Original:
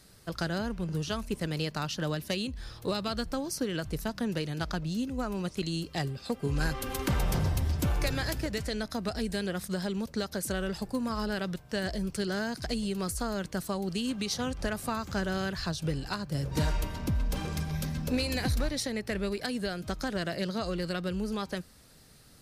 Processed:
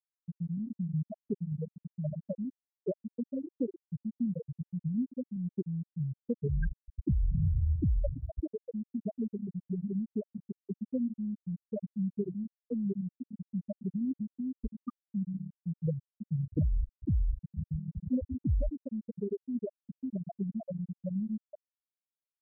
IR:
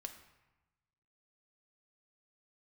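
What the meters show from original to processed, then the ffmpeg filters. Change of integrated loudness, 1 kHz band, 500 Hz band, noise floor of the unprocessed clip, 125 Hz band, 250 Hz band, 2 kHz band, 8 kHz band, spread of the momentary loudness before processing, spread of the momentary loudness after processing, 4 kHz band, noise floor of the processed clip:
−3.0 dB, below −20 dB, −7.0 dB, −54 dBFS, −1.0 dB, −1.5 dB, below −20 dB, below −40 dB, 4 LU, 8 LU, below −40 dB, below −85 dBFS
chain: -filter_complex "[0:a]afftfilt=real='re*gte(hypot(re,im),0.224)':imag='im*gte(hypot(re,im),0.224)':win_size=1024:overlap=0.75,asplit=2[link_01][link_02];[link_02]acompressor=threshold=-42dB:ratio=6,volume=-2dB[link_03];[link_01][link_03]amix=inputs=2:normalize=0"

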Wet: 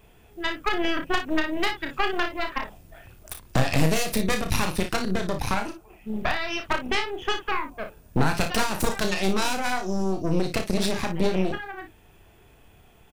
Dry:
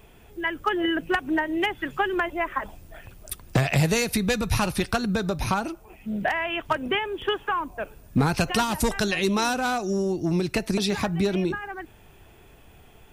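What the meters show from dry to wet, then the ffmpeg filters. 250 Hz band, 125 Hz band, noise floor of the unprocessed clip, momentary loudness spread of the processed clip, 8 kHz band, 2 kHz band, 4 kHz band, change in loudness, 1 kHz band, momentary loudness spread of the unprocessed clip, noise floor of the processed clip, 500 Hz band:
−2.0 dB, −2.0 dB, −52 dBFS, 10 LU, 0.0 dB, −1.0 dB, +0.5 dB, −1.0 dB, −1.0 dB, 11 LU, −54 dBFS, −1.5 dB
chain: -af "aeval=exprs='0.266*(cos(1*acos(clip(val(0)/0.266,-1,1)))-cos(1*PI/2))+0.106*(cos(4*acos(clip(val(0)/0.266,-1,1)))-cos(4*PI/2))':channel_layout=same,aecho=1:1:32|57:0.447|0.316,volume=-4dB"

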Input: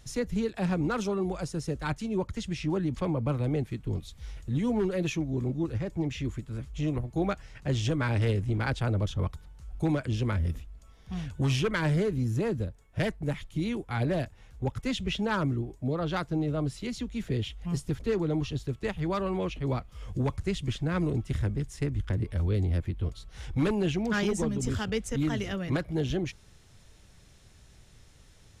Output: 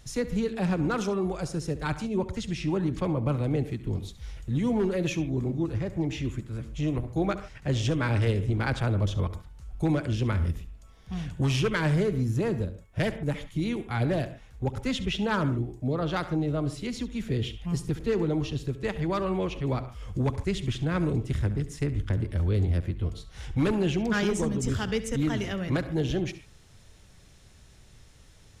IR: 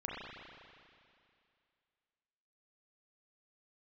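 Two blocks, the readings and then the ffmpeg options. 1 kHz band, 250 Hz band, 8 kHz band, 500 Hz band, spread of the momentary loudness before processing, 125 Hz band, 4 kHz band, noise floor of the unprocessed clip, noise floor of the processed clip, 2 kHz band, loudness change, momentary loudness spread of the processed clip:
+2.0 dB, +1.5 dB, +1.5 dB, +2.0 dB, 8 LU, +2.0 dB, +1.5 dB, −56 dBFS, −54 dBFS, +2.0 dB, +2.0 dB, 8 LU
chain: -filter_complex "[0:a]asplit=2[link_01][link_02];[1:a]atrim=start_sample=2205,afade=type=out:start_time=0.13:duration=0.01,atrim=end_sample=6174,adelay=69[link_03];[link_02][link_03]afir=irnorm=-1:irlink=0,volume=-11.5dB[link_04];[link_01][link_04]amix=inputs=2:normalize=0,volume=1.5dB"

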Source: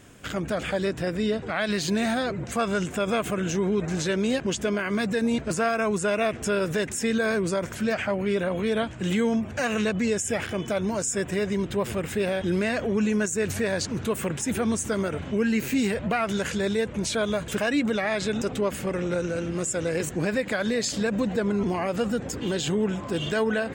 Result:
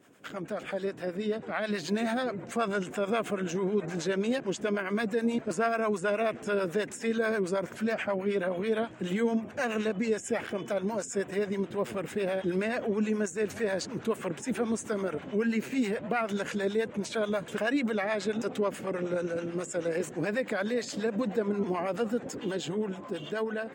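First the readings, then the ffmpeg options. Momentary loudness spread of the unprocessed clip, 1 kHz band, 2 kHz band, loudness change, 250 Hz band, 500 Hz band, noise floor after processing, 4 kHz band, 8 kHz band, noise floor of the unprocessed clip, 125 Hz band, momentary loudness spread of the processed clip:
4 LU, −4.0 dB, −5.0 dB, −4.5 dB, −5.5 dB, −3.5 dB, −44 dBFS, −8.0 dB, −10.5 dB, −37 dBFS, −8.0 dB, 4 LU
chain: -filter_complex "[0:a]highpass=220,acrossover=split=9600[link_01][link_02];[link_02]acompressor=threshold=-50dB:ratio=4:attack=1:release=60[link_03];[link_01][link_03]amix=inputs=2:normalize=0,equalizer=frequency=6400:width_type=o:width=2.9:gain=-7,dynaudnorm=framelen=150:gausssize=17:maxgain=3.5dB,acrossover=split=600[link_04][link_05];[link_04]aeval=exprs='val(0)*(1-0.7/2+0.7/2*cos(2*PI*9.3*n/s))':channel_layout=same[link_06];[link_05]aeval=exprs='val(0)*(1-0.7/2-0.7/2*cos(2*PI*9.3*n/s))':channel_layout=same[link_07];[link_06][link_07]amix=inputs=2:normalize=0,volume=-2.5dB"

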